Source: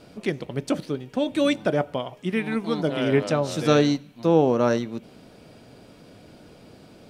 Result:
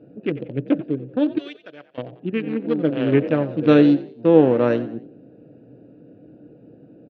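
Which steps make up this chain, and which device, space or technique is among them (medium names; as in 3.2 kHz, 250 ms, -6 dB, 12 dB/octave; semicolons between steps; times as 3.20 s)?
local Wiener filter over 41 samples; 1.38–1.98 s: pre-emphasis filter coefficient 0.97; frequency-shifting delay pedal into a guitar cabinet (frequency-shifting echo 90 ms, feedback 38%, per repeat +53 Hz, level -16 dB; cabinet simulation 78–3700 Hz, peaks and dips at 91 Hz -9 dB, 130 Hz +7 dB, 300 Hz +10 dB, 490 Hz +7 dB, 1.6 kHz +4 dB, 2.7 kHz +5 dB); trim -1 dB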